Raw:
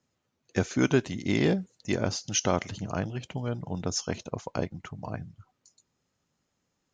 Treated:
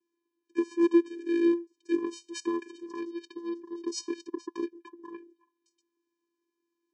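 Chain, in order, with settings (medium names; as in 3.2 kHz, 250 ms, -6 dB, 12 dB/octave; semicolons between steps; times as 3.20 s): vocoder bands 8, square 340 Hz; 2.87–4.73 s: peaking EQ 5.1 kHz +9.5 dB 1.1 oct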